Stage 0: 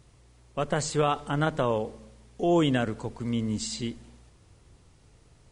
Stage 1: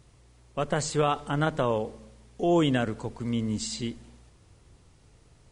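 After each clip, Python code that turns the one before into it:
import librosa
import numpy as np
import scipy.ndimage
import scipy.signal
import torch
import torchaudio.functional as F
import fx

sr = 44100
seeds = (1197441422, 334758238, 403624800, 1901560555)

y = x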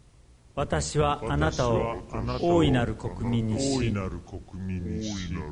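y = fx.octave_divider(x, sr, octaves=1, level_db=-2.0)
y = fx.echo_pitch(y, sr, ms=497, semitones=-4, count=2, db_per_echo=-6.0)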